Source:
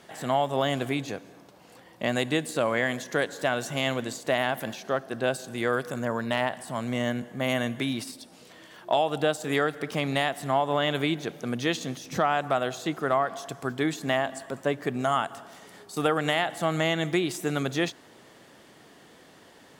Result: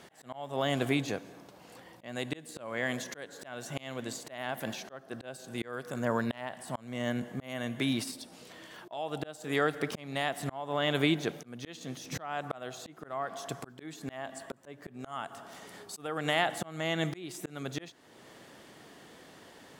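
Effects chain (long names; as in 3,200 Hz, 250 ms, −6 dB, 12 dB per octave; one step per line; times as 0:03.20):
volume swells 527 ms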